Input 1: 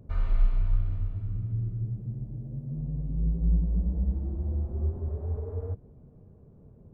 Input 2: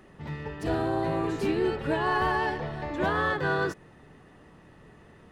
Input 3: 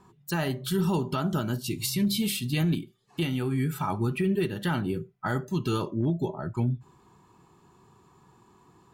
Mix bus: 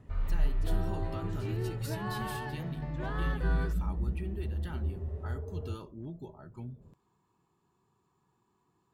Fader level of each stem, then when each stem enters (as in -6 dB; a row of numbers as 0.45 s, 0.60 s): -5.0 dB, -12.5 dB, -16.0 dB; 0.00 s, 0.00 s, 0.00 s